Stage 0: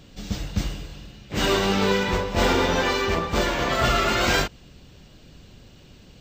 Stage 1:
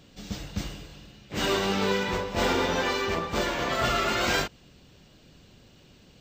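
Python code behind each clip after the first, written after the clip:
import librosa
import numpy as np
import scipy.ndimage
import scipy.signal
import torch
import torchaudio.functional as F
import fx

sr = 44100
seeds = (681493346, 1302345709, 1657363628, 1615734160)

y = fx.low_shelf(x, sr, hz=80.0, db=-8.5)
y = y * librosa.db_to_amplitude(-4.0)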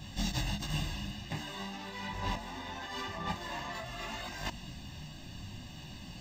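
y = x + 0.85 * np.pad(x, (int(1.1 * sr / 1000.0), 0))[:len(x)]
y = fx.over_compress(y, sr, threshold_db=-36.0, ratio=-1.0)
y = fx.detune_double(y, sr, cents=16)
y = y * librosa.db_to_amplitude(1.0)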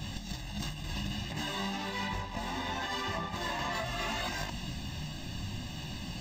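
y = fx.over_compress(x, sr, threshold_db=-40.0, ratio=-1.0)
y = y * librosa.db_to_amplitude(4.5)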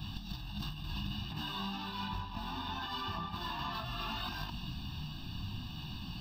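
y = fx.fixed_phaser(x, sr, hz=2000.0, stages=6)
y = y * librosa.db_to_amplitude(-1.5)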